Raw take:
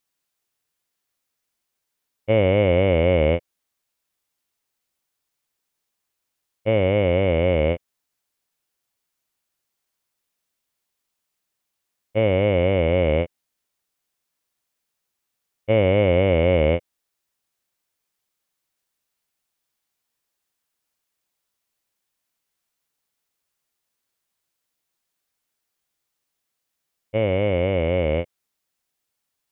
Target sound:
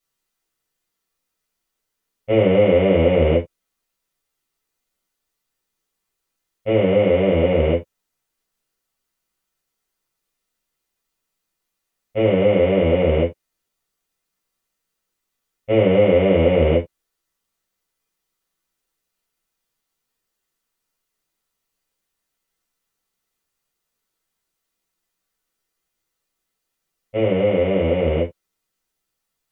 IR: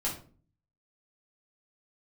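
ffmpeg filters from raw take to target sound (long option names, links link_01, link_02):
-filter_complex "[1:a]atrim=start_sample=2205,afade=type=out:start_time=0.16:duration=0.01,atrim=end_sample=7497,asetrate=66150,aresample=44100[link_01];[0:a][link_01]afir=irnorm=-1:irlink=0"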